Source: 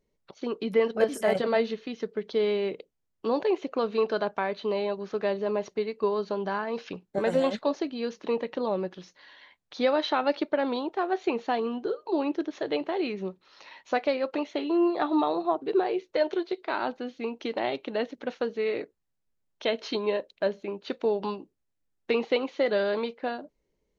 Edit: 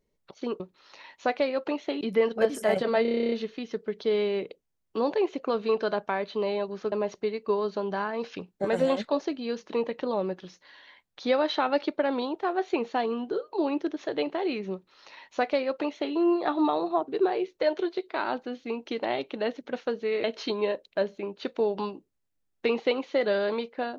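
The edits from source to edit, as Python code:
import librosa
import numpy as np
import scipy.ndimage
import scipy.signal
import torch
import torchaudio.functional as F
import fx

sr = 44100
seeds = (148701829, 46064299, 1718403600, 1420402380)

y = fx.edit(x, sr, fx.stutter(start_s=1.61, slice_s=0.03, count=11),
    fx.cut(start_s=5.21, length_s=0.25),
    fx.duplicate(start_s=13.27, length_s=1.41, to_s=0.6),
    fx.cut(start_s=18.78, length_s=0.91), tone=tone)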